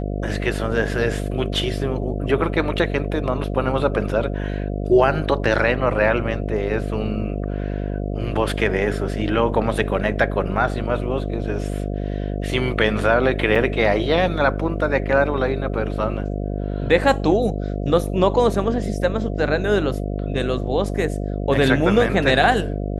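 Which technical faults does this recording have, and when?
mains buzz 50 Hz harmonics 14 −25 dBFS
0:13.55–0:13.56: drop-out 5.7 ms

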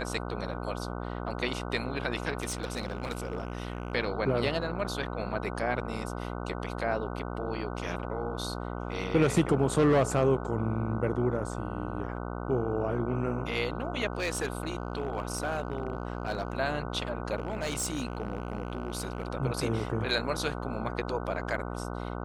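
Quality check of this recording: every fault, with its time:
mains buzz 60 Hz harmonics 25 −36 dBFS
0:02.42–0:03.93: clipping −28 dBFS
0:14.13–0:16.57: clipping −25 dBFS
0:17.37–0:19.28: clipping −27 dBFS

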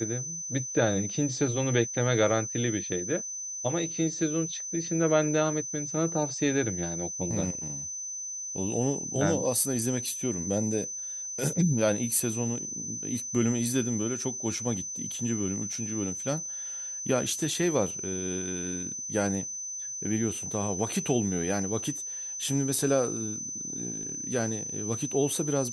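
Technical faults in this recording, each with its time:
whistle 6,100 Hz −34 dBFS

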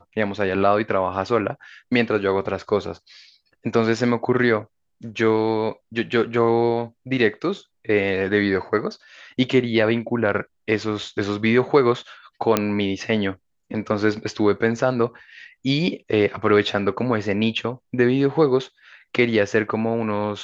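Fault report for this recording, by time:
0:12.57: click −3 dBFS

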